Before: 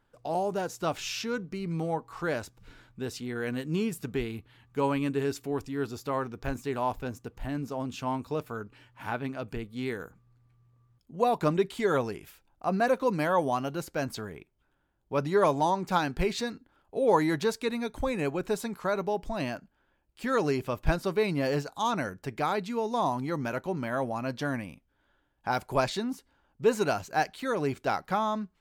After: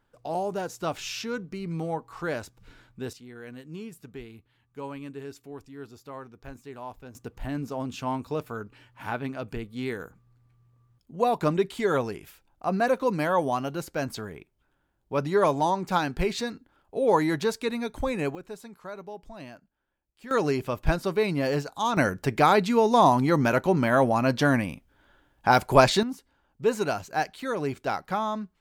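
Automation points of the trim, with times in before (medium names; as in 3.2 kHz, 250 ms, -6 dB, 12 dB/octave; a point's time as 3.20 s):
0 dB
from 3.13 s -10 dB
from 7.15 s +1.5 dB
from 18.35 s -10.5 dB
from 20.31 s +2 dB
from 21.97 s +9.5 dB
from 26.03 s 0 dB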